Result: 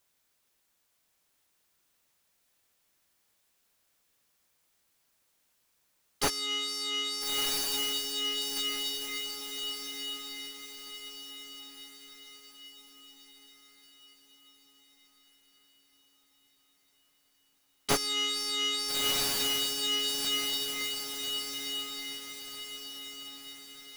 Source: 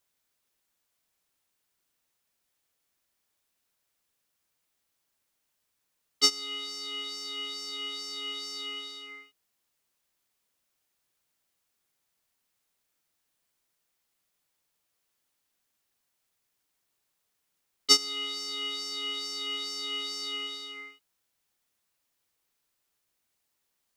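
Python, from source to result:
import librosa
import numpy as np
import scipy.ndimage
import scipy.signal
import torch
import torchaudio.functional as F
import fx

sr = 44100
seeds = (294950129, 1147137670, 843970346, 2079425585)

y = fx.self_delay(x, sr, depth_ms=0.37)
y = fx.echo_diffused(y, sr, ms=1341, feedback_pct=45, wet_db=-5)
y = fx.slew_limit(y, sr, full_power_hz=180.0)
y = F.gain(torch.from_numpy(y), 4.5).numpy()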